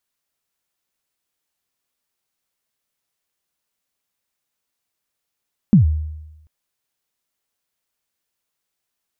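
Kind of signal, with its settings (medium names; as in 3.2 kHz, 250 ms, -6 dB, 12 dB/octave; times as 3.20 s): kick drum length 0.74 s, from 230 Hz, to 77 Hz, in 121 ms, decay 1.00 s, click off, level -5 dB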